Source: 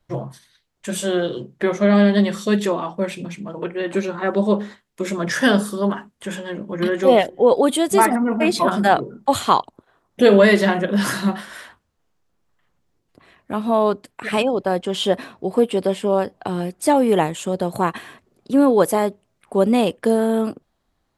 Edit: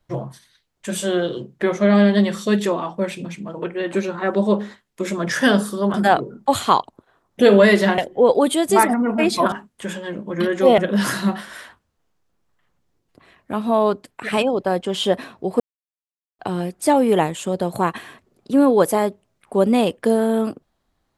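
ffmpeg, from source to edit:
-filter_complex "[0:a]asplit=7[s0][s1][s2][s3][s4][s5][s6];[s0]atrim=end=5.942[s7];[s1]atrim=start=8.738:end=10.782[s8];[s2]atrim=start=7.198:end=8.742[s9];[s3]atrim=start=5.938:end=7.202[s10];[s4]atrim=start=10.778:end=15.6,asetpts=PTS-STARTPTS,afade=t=out:st=4.818:d=0.004:c=hsin[s11];[s5]atrim=start=15.6:end=16.39,asetpts=PTS-STARTPTS,volume=0[s12];[s6]atrim=start=16.39,asetpts=PTS-STARTPTS,afade=t=in:d=0.004:c=hsin[s13];[s7][s8]acrossfade=d=0.004:c1=hsin:c2=hsin[s14];[s14][s9]acrossfade=d=0.004:c1=hsin:c2=hsin[s15];[s15][s10]acrossfade=d=0.004:c1=hsin:c2=hsin[s16];[s11][s12][s13]concat=n=3:v=0:a=1[s17];[s16][s17]acrossfade=d=0.004:c1=hsin:c2=hsin"

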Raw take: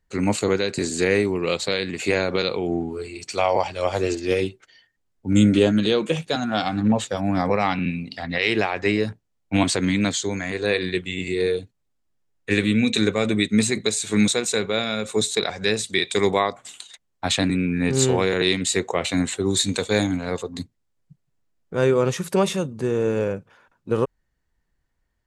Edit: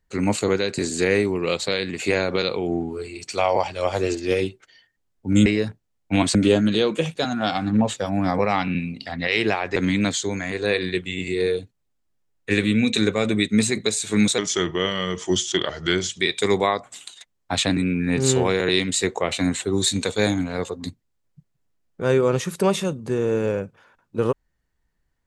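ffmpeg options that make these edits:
-filter_complex "[0:a]asplit=6[s0][s1][s2][s3][s4][s5];[s0]atrim=end=5.462[s6];[s1]atrim=start=8.868:end=9.762[s7];[s2]atrim=start=5.458:end=8.872[s8];[s3]atrim=start=9.758:end=14.384[s9];[s4]atrim=start=14.38:end=15.92,asetpts=PTS-STARTPTS,asetrate=37485,aresample=44100[s10];[s5]atrim=start=15.916[s11];[s6][s7]acrossfade=d=0.004:c1=hsin:c2=hsin[s12];[s12][s8]acrossfade=d=0.004:c1=hsin:c2=hsin[s13];[s13][s9]acrossfade=d=0.004:c1=hsin:c2=hsin[s14];[s14][s10]acrossfade=d=0.004:c1=hsin:c2=hsin[s15];[s15][s11]acrossfade=d=0.004:c1=hsin:c2=hsin"

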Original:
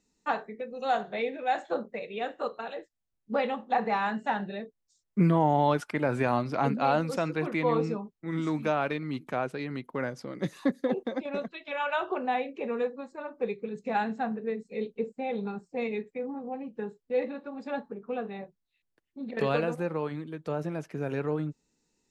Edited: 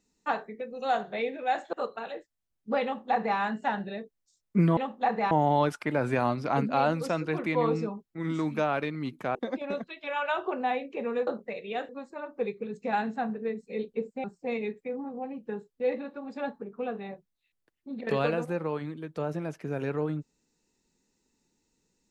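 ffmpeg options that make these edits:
-filter_complex "[0:a]asplit=8[s0][s1][s2][s3][s4][s5][s6][s7];[s0]atrim=end=1.732[s8];[s1]atrim=start=2.348:end=5.392[s9];[s2]atrim=start=3.458:end=4.002[s10];[s3]atrim=start=5.388:end=9.432[s11];[s4]atrim=start=10.988:end=12.912[s12];[s5]atrim=start=1.728:end=2.352[s13];[s6]atrim=start=12.908:end=15.262[s14];[s7]atrim=start=15.538[s15];[s8][s9]acrossfade=d=0.004:c1=hsin:c2=hsin[s16];[s16][s10]acrossfade=d=0.004:c1=hsin:c2=hsin[s17];[s17][s11]acrossfade=d=0.004:c1=hsin:c2=hsin[s18];[s18][s12]acrossfade=d=0.004:c1=hsin:c2=hsin[s19];[s19][s13]acrossfade=d=0.004:c1=hsin:c2=hsin[s20];[s20][s14]acrossfade=d=0.004:c1=hsin:c2=hsin[s21];[s21][s15]acrossfade=d=0.004:c1=hsin:c2=hsin"

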